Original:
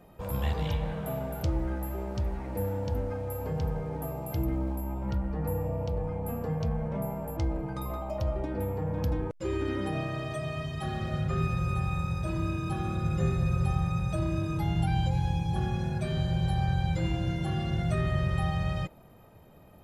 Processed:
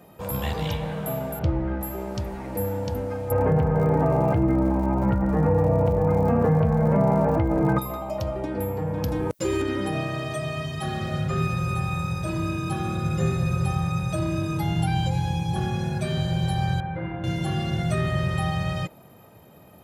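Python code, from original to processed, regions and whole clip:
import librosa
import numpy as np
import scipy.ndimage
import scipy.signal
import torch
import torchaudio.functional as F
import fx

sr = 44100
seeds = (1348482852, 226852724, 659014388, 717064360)

y = fx.chain(x, sr, fx.lowpass(hz=2700.0, slope=12),
    fx.low_shelf(hz=150.0, db=6.5), at=(1.39, 1.81))
y = fx.lowpass(y, sr, hz=2100.0, slope=24, at=(3.3, 7.78), fade=0.02)
y = fx.dmg_crackle(y, sr, seeds[0], per_s=110.0, level_db=-54.0, at=(3.3, 7.78), fade=0.02)
y = fx.env_flatten(y, sr, amount_pct=70, at=(3.3, 7.78), fade=0.02)
y = fx.chain(y, sr, fx.high_shelf(hz=8100.0, db=10.0),
    fx.env_flatten(amount_pct=50), at=(9.08, 9.62))
y = fx.chain(y, sr, fx.lowpass(hz=1900.0, slope=24),
    fx.low_shelf(hz=230.0, db=-9.5),
    fx.doubler(ms=41.0, db=-12.0), at=(16.8, 17.24))
y = scipy.signal.sosfilt(scipy.signal.butter(2, 97.0, 'highpass', fs=sr, output='sos'), y)
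y = fx.high_shelf(y, sr, hz=4400.0, db=5.5)
y = y * librosa.db_to_amplitude(5.0)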